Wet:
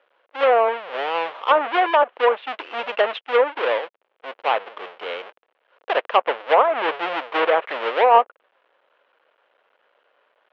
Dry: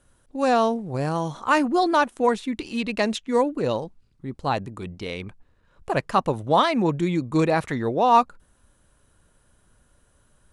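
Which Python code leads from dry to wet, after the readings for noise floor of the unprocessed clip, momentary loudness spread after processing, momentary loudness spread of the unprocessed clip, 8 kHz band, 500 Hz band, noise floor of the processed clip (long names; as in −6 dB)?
−63 dBFS, 15 LU, 14 LU, below −20 dB, +4.0 dB, −70 dBFS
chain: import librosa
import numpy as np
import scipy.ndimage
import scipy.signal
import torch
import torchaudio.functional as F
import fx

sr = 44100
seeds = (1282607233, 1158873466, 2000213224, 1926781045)

y = fx.halfwave_hold(x, sr)
y = scipy.signal.sosfilt(scipy.signal.ellip(3, 1.0, 70, [490.0, 3100.0], 'bandpass', fs=sr, output='sos'), y)
y = fx.env_lowpass_down(y, sr, base_hz=1200.0, full_db=-13.0)
y = F.gain(torch.from_numpy(y), 2.0).numpy()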